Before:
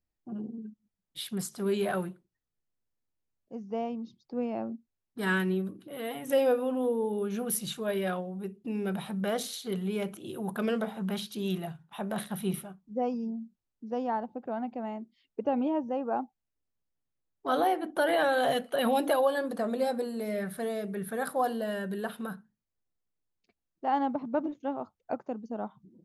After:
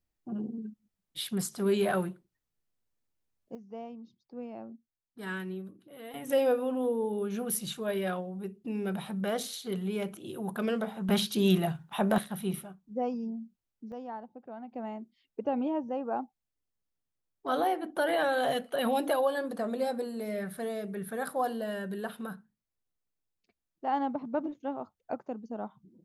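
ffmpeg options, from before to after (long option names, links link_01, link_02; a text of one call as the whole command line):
ffmpeg -i in.wav -af "asetnsamples=nb_out_samples=441:pad=0,asendcmd='3.55 volume volume -9dB;6.14 volume volume -1dB;11.09 volume volume 7.5dB;12.18 volume volume -1.5dB;13.92 volume volume -9.5dB;14.74 volume volume -2dB',volume=2dB" out.wav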